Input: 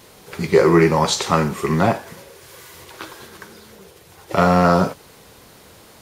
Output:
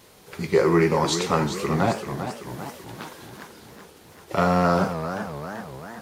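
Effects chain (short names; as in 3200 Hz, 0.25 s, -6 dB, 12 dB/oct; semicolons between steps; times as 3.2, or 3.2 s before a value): warbling echo 0.39 s, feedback 58%, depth 193 cents, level -9.5 dB; gain -5.5 dB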